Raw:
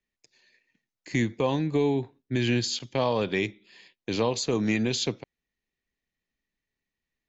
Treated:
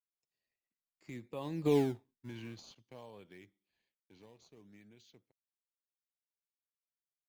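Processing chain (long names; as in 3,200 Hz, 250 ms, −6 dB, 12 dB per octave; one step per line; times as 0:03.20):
source passing by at 0:01.75, 17 m/s, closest 1.4 metres
in parallel at −9 dB: sample-and-hold swept by an LFO 20×, swing 160% 0.55 Hz
on the sum: level −5.5 dB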